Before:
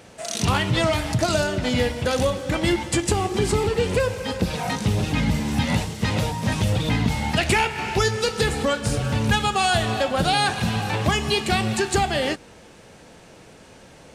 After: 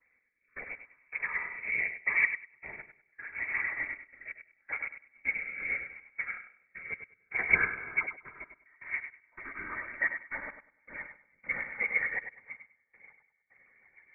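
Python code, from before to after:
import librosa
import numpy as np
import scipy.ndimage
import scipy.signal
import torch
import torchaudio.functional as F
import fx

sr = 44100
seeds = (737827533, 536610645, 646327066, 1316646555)

p1 = fx.vocoder_glide(x, sr, note=59, semitones=6)
p2 = p1 + fx.echo_diffused(p1, sr, ms=686, feedback_pct=52, wet_db=-14.0, dry=0)
p3 = fx.step_gate(p2, sr, bpm=80, pattern='x..x..xxxx.', floor_db=-24.0, edge_ms=4.5)
p4 = fx.whisperise(p3, sr, seeds[0])
p5 = fx.freq_invert(p4, sr, carrier_hz=2500)
p6 = fx.rotary_switch(p5, sr, hz=0.75, then_hz=6.7, switch_at_s=10.09)
p7 = fx.echo_feedback(p6, sr, ms=99, feedback_pct=32, wet_db=-6.0)
p8 = fx.upward_expand(p7, sr, threshold_db=-43.0, expansion=1.5)
y = p8 * librosa.db_to_amplitude(-4.5)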